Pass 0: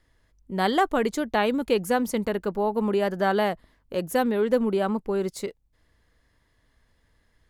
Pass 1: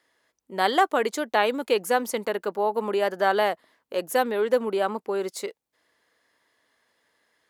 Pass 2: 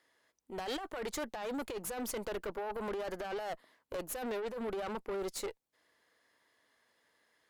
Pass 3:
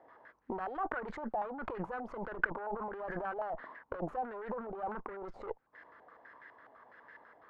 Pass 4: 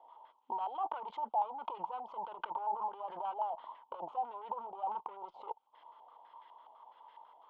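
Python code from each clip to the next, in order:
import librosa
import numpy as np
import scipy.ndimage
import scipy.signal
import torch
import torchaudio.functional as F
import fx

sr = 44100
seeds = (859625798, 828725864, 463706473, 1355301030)

y1 = scipy.signal.sosfilt(scipy.signal.butter(2, 410.0, 'highpass', fs=sr, output='sos'), x)
y1 = y1 * librosa.db_to_amplitude(2.5)
y2 = fx.over_compress(y1, sr, threshold_db=-27.0, ratio=-1.0)
y2 = fx.tube_stage(y2, sr, drive_db=29.0, bias=0.6)
y2 = y2 * librosa.db_to_amplitude(-4.5)
y3 = fx.over_compress(y2, sr, threshold_db=-47.0, ratio=-1.0)
y3 = fx.filter_held_lowpass(y3, sr, hz=12.0, low_hz=750.0, high_hz=1700.0)
y3 = y3 * librosa.db_to_amplitude(4.5)
y4 = fx.double_bandpass(y3, sr, hz=1700.0, octaves=1.8)
y4 = y4 * librosa.db_to_amplitude(10.0)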